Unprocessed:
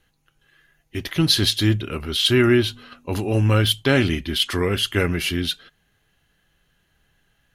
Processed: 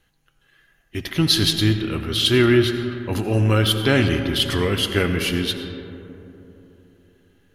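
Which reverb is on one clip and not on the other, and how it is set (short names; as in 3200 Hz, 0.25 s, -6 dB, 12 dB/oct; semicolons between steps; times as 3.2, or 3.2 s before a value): digital reverb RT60 3.4 s, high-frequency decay 0.3×, pre-delay 45 ms, DRR 7 dB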